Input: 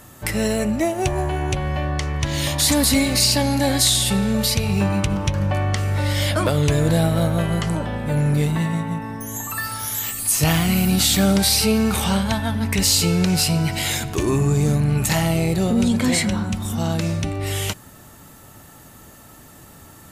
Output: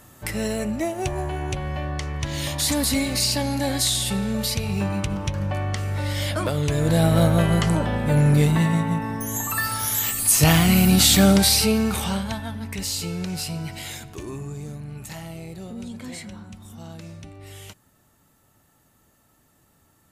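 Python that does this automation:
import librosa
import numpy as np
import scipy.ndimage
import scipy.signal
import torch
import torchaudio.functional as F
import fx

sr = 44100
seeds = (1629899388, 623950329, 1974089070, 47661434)

y = fx.gain(x, sr, db=fx.line((6.7, -5.0), (7.16, 2.0), (11.27, 2.0), (12.68, -10.5), (13.7, -10.5), (14.74, -17.0)))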